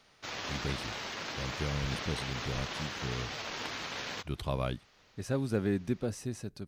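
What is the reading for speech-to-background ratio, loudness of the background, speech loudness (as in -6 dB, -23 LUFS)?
1.0 dB, -38.0 LUFS, -37.0 LUFS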